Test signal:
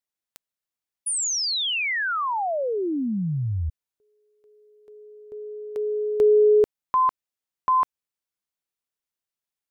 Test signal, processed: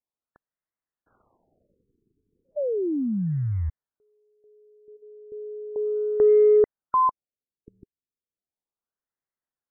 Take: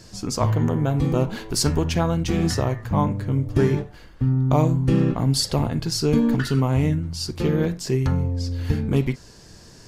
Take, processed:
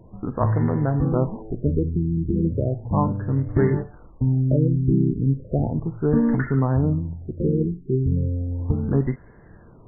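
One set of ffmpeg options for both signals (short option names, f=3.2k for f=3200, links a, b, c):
-af "acrusher=bits=7:mode=log:mix=0:aa=0.000001,afftfilt=real='re*lt(b*sr/1024,430*pow(2200/430,0.5+0.5*sin(2*PI*0.35*pts/sr)))':imag='im*lt(b*sr/1024,430*pow(2200/430,0.5+0.5*sin(2*PI*0.35*pts/sr)))':win_size=1024:overlap=0.75"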